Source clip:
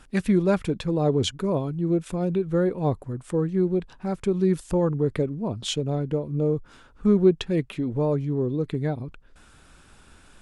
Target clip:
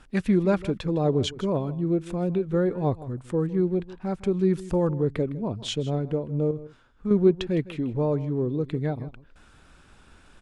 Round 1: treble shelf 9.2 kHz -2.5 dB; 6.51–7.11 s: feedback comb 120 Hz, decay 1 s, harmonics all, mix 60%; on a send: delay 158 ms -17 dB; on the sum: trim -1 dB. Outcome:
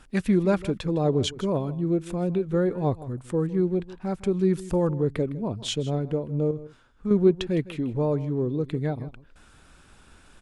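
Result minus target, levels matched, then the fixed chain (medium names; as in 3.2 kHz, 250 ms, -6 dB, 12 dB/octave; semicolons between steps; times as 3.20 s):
8 kHz band +3.5 dB
treble shelf 9.2 kHz -13 dB; 6.51–7.11 s: feedback comb 120 Hz, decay 1 s, harmonics all, mix 60%; on a send: delay 158 ms -17 dB; on the sum: trim -1 dB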